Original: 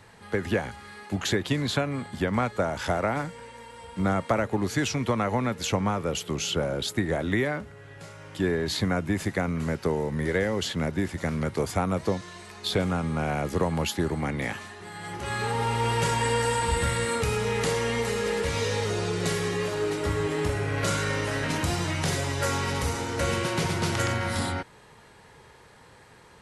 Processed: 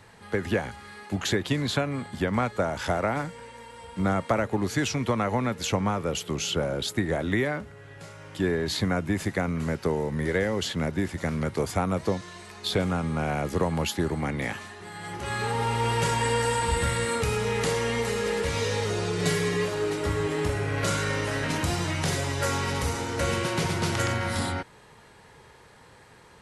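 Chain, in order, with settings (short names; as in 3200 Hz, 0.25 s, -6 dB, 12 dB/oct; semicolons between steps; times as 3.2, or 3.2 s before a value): 19.18–19.65 comb 6.7 ms, depth 65%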